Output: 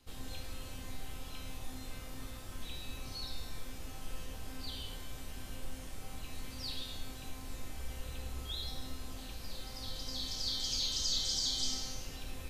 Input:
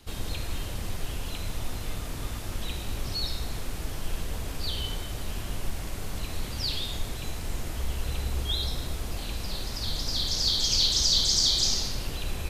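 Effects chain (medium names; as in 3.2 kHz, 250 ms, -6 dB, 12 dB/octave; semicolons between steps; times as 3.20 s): feedback comb 260 Hz, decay 0.93 s, mix 90%; trim +6 dB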